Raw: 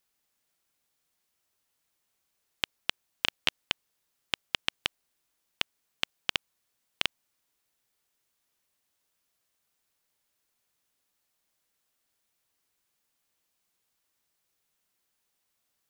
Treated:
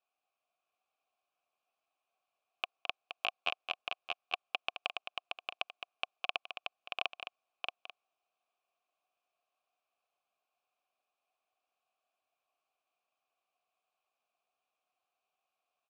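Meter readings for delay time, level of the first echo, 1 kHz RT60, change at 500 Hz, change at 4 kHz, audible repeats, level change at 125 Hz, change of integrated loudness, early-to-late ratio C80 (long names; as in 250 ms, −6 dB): 214 ms, −8.5 dB, no reverb audible, +1.0 dB, −7.5 dB, 3, below −20 dB, −6.5 dB, no reverb audible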